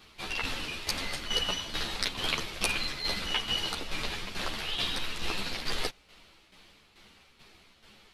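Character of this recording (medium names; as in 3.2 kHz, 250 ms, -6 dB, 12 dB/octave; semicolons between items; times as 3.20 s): tremolo saw down 2.3 Hz, depth 65%; a shimmering, thickened sound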